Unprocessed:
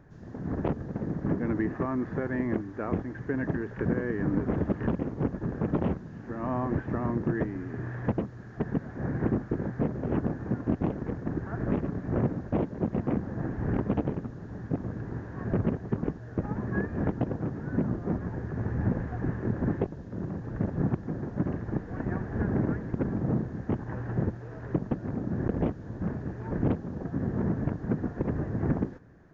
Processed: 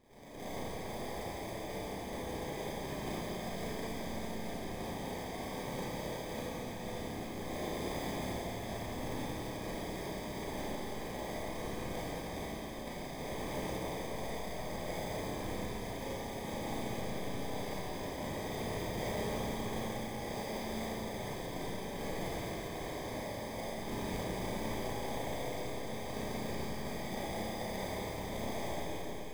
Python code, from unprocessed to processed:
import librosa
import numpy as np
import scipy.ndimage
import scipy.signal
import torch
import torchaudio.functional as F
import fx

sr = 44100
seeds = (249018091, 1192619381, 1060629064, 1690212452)

p1 = fx.peak_eq(x, sr, hz=77.0, db=-8.0, octaves=1.7)
p2 = np.clip(10.0 ** (26.0 / 20.0) * p1, -1.0, 1.0) / 10.0 ** (26.0 / 20.0)
p3 = fx.over_compress(p2, sr, threshold_db=-35.0, ratio=-0.5)
p4 = fx.peak_eq(p3, sr, hz=740.0, db=6.0, octaves=0.28)
p5 = p4 * np.sin(2.0 * np.pi * 170.0 * np.arange(len(p4)) / sr)
p6 = p5 + fx.echo_heads(p5, sr, ms=90, heads='second and third', feedback_pct=66, wet_db=-11.0, dry=0)
p7 = fx.spec_gate(p6, sr, threshold_db=-15, keep='weak')
p8 = fx.sample_hold(p7, sr, seeds[0], rate_hz=1400.0, jitter_pct=0)
p9 = fx.rev_schroeder(p8, sr, rt60_s=2.9, comb_ms=28, drr_db=-9.5)
y = p9 * 10.0 ** (2.5 / 20.0)